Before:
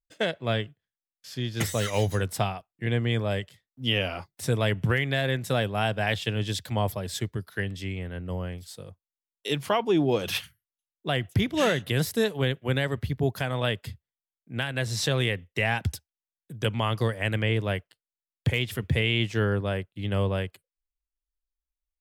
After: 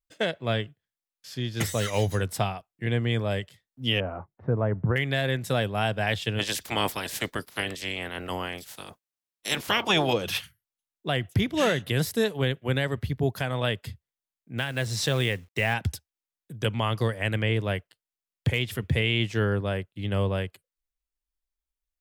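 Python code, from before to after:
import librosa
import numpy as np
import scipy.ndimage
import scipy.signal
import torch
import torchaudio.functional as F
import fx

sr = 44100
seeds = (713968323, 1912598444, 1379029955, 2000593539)

y = fx.lowpass(x, sr, hz=1300.0, slope=24, at=(4.0, 4.96))
y = fx.spec_clip(y, sr, under_db=26, at=(6.38, 10.12), fade=0.02)
y = fx.quant_companded(y, sr, bits=6, at=(14.58, 15.74))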